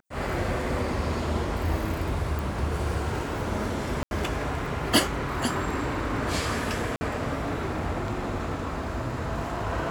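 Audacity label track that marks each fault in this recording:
2.390000	2.390000	pop
4.030000	4.110000	dropout 81 ms
6.960000	7.010000	dropout 50 ms

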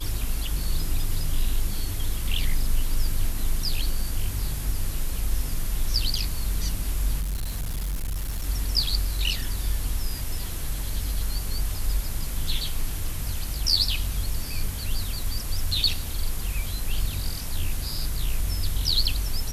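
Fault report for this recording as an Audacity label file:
7.200000	8.440000	clipped -25 dBFS

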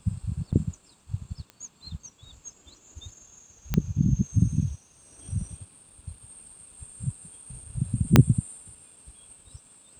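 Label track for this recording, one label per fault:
0.520000	0.530000	dropout 7.5 ms
1.500000	1.500000	pop -27 dBFS
3.740000	3.740000	pop -11 dBFS
8.160000	8.160000	pop 0 dBFS

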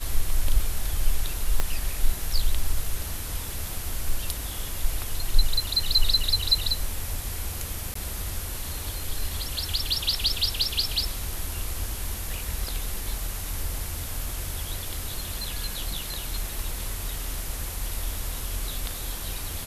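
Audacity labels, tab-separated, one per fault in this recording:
1.600000	1.600000	pop -10 dBFS
7.940000	7.950000	dropout 14 ms

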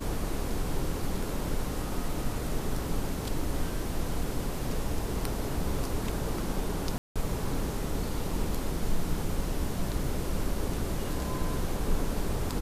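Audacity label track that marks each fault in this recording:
6.980000	7.160000	dropout 176 ms

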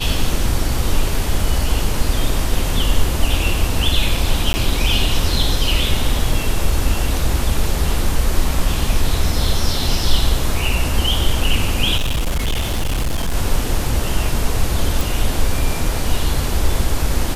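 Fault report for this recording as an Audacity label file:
4.530000	4.540000	dropout 10 ms
11.970000	13.350000	clipped -15 dBFS
15.010000	15.010000	pop

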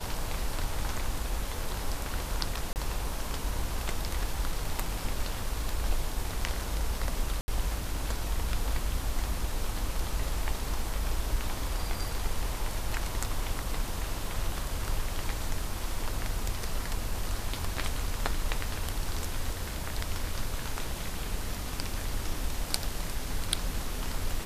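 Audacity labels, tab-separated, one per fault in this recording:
2.730000	2.760000	dropout 29 ms
7.410000	7.480000	dropout 70 ms

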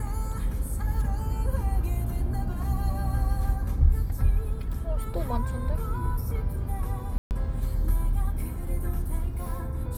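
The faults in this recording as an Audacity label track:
7.180000	7.310000	dropout 129 ms

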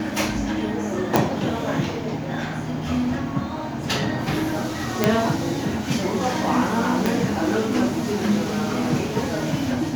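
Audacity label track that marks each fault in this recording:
1.160000	1.160000	pop
5.040000	5.040000	pop -2 dBFS
7.060000	7.060000	pop

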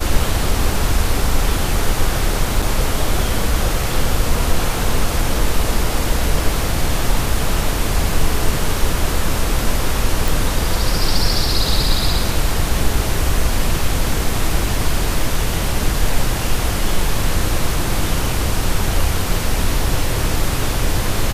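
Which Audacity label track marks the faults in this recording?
2.620000	2.620000	dropout 4.8 ms
10.280000	10.280000	pop

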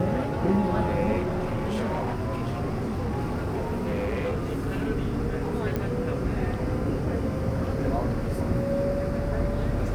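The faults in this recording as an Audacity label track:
1.180000	4.890000	clipped -24 dBFS
5.760000	5.760000	pop -16 dBFS

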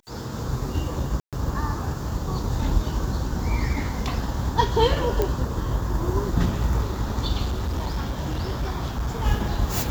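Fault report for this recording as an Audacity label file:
1.200000	1.330000	dropout 127 ms
5.220000	5.220000	pop -10 dBFS
7.440000	9.240000	clipped -22 dBFS

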